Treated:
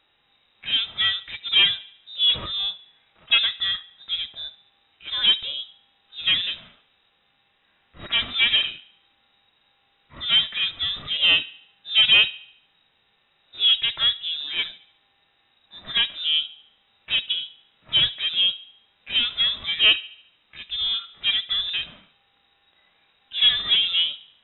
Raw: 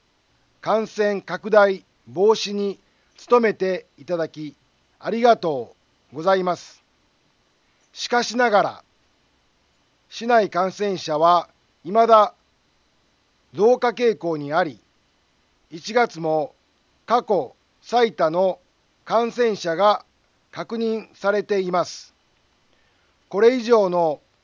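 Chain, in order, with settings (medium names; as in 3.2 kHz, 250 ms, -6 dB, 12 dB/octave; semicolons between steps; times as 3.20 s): peaking EQ 330 Hz -8 dB 1.9 oct; valve stage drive 17 dB, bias 0.6; harmonic-percussive split percussive -12 dB; on a send: feedback echo behind a low-pass 72 ms, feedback 48%, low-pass 2.1 kHz, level -18.5 dB; on the sum: frequency inversion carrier 3.8 kHz; trim +7 dB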